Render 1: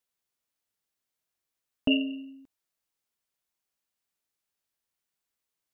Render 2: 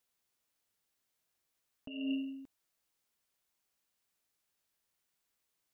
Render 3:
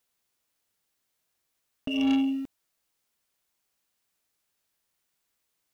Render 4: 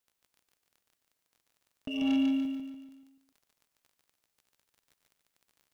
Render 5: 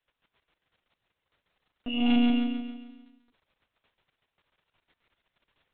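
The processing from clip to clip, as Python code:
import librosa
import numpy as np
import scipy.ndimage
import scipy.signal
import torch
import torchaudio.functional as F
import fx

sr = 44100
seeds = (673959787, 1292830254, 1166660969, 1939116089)

y1 = fx.over_compress(x, sr, threshold_db=-35.0, ratio=-1.0)
y1 = y1 * 10.0 ** (-3.0 / 20.0)
y2 = fx.leveller(y1, sr, passes=2)
y2 = y2 * 10.0 ** (8.0 / 20.0)
y3 = fx.dmg_crackle(y2, sr, seeds[0], per_s=15.0, level_db=-42.0)
y3 = fx.echo_feedback(y3, sr, ms=145, feedback_pct=47, wet_db=-3)
y3 = y3 * 10.0 ** (-6.0 / 20.0)
y4 = fx.lpc_monotone(y3, sr, seeds[1], pitch_hz=240.0, order=16)
y4 = y4 * 10.0 ** (4.5 / 20.0)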